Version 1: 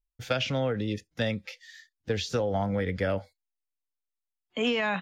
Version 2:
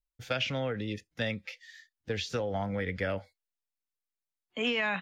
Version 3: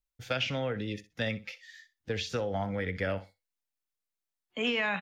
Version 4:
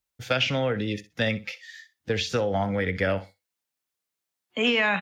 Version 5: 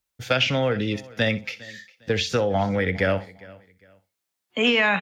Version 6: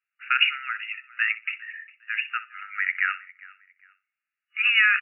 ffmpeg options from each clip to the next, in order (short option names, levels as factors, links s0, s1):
-af "adynamicequalizer=threshold=0.00562:dfrequency=2200:dqfactor=1.1:tfrequency=2200:tqfactor=1.1:attack=5:release=100:ratio=0.375:range=3:mode=boostabove:tftype=bell,volume=0.562"
-af "aecho=1:1:63|126:0.168|0.0285"
-af "highpass=75,volume=2.24"
-af "aecho=1:1:405|810:0.0794|0.023,volume=1.41"
-af "afftfilt=real='re*between(b*sr/4096,1200,2900)':imag='im*between(b*sr/4096,1200,2900)':win_size=4096:overlap=0.75,volume=1.5"